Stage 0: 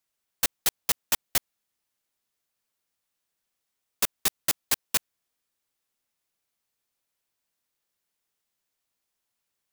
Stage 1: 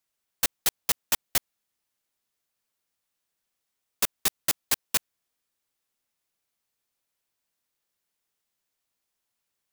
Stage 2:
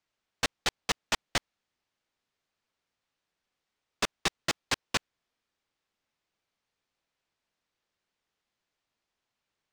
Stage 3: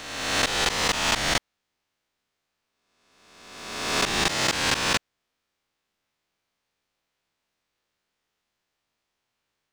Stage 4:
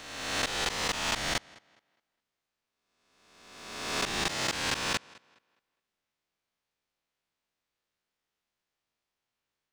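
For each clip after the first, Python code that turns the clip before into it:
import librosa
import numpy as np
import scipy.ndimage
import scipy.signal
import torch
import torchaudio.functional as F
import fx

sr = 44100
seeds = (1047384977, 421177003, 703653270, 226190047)

y1 = x
y2 = fx.air_absorb(y1, sr, metres=120.0)
y2 = F.gain(torch.from_numpy(y2), 3.5).numpy()
y3 = fx.spec_swells(y2, sr, rise_s=1.31)
y3 = F.gain(torch.from_numpy(y3), 2.0).numpy()
y4 = fx.echo_tape(y3, sr, ms=206, feedback_pct=32, wet_db=-22.0, lp_hz=4700.0, drive_db=6.0, wow_cents=12)
y4 = F.gain(torch.from_numpy(y4), -7.0).numpy()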